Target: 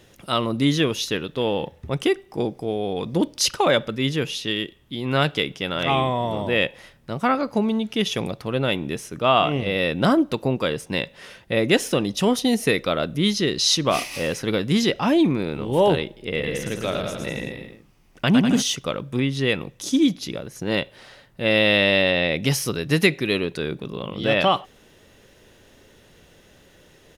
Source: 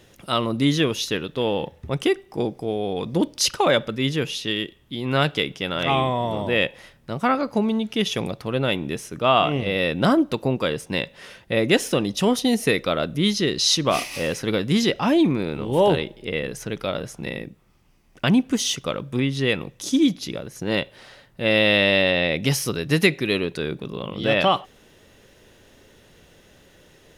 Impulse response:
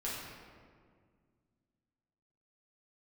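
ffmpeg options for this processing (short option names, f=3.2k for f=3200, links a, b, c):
-filter_complex "[0:a]asplit=3[a][b][c];[a]afade=t=out:st=16.33:d=0.02[d];[b]aecho=1:1:110|198|268.4|324.7|369.8:0.631|0.398|0.251|0.158|0.1,afade=t=in:st=16.33:d=0.02,afade=t=out:st=18.61:d=0.02[e];[c]afade=t=in:st=18.61:d=0.02[f];[d][e][f]amix=inputs=3:normalize=0"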